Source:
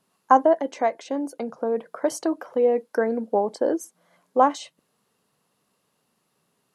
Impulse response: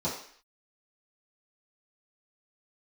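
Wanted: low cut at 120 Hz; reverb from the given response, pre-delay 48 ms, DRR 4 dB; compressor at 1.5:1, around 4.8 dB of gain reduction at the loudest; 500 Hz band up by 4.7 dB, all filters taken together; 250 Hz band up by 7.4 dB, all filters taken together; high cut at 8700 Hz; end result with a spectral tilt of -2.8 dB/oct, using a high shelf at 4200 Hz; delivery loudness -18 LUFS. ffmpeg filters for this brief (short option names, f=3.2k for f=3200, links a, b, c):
-filter_complex "[0:a]highpass=120,lowpass=8.7k,equalizer=f=250:t=o:g=8,equalizer=f=500:t=o:g=3.5,highshelf=f=4.2k:g=8,acompressor=threshold=-21dB:ratio=1.5,asplit=2[a][b];[1:a]atrim=start_sample=2205,adelay=48[c];[b][c]afir=irnorm=-1:irlink=0,volume=-11.5dB[d];[a][d]amix=inputs=2:normalize=0,volume=1.5dB"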